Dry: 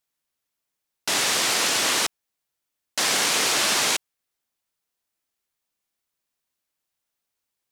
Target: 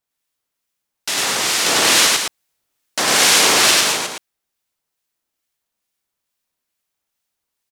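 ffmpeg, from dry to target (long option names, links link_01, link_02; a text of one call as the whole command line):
ffmpeg -i in.wav -filter_complex "[0:a]asettb=1/sr,asplit=3[link_01][link_02][link_03];[link_01]atrim=end=1.664[link_04];[link_02]atrim=start=1.66:end=3.71,asetpts=PTS-STARTPTS,afade=type=in:duration=0.004:curve=qsin,afade=type=out:start_time=2.046:duration=0.004:curve=qsin,acontrast=39[link_05];[link_03]atrim=start=3.706[link_06];[link_04][link_05]acrossfade=duration=0.004:curve1=hsin:curve2=qsin[link_07];[link_07][link_06]acrossfade=duration=0.004:curve1=qsin:curve2=hsin,acrossover=split=1500[link_08][link_09];[link_08]aeval=exprs='val(0)*(1-0.5/2+0.5/2*cos(2*PI*2.3*n/s))':channel_layout=same[link_10];[link_09]aeval=exprs='val(0)*(1-0.5/2-0.5/2*cos(2*PI*2.3*n/s))':channel_layout=same[link_11];[link_10][link_11]amix=inputs=2:normalize=0,aecho=1:1:99.13|212.8:0.891|0.501,volume=3dB" out.wav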